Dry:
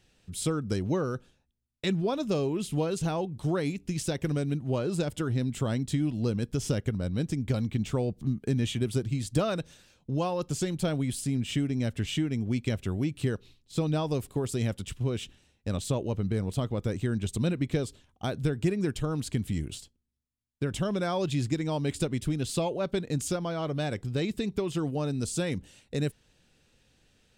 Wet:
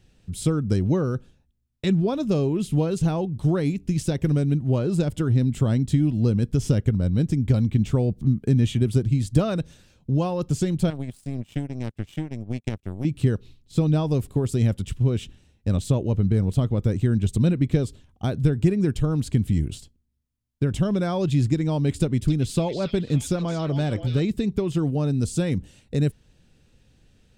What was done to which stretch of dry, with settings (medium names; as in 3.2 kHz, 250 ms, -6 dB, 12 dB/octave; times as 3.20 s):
10.90–13.05 s: power-law waveshaper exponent 2
22.00–24.20 s: repeats whose band climbs or falls 277 ms, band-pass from 3.9 kHz, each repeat -0.7 oct, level -1.5 dB
whole clip: bass shelf 320 Hz +11 dB